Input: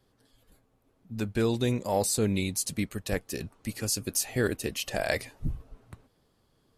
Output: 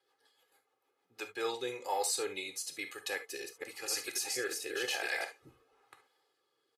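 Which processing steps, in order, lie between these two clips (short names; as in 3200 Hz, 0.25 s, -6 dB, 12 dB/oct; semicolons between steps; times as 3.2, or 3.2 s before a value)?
3.15–5.25 reverse delay 0.244 s, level -0.5 dB; HPF 760 Hz 12 dB/oct; high shelf 4900 Hz -8 dB; comb 2.4 ms, depth 84%; limiter -22.5 dBFS, peak gain reduction 9 dB; rotary speaker horn 6.7 Hz, later 1 Hz, at 0.85; non-linear reverb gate 90 ms flat, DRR 7 dB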